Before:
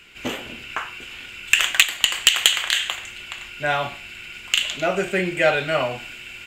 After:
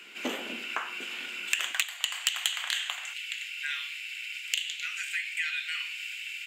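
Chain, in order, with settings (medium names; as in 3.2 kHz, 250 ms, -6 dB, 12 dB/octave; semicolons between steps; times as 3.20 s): steep high-pass 200 Hz 36 dB/octave, from 1.72 s 660 Hz, from 3.13 s 1.8 kHz; compression 2.5:1, threshold -31 dBFS, peak gain reduction 15 dB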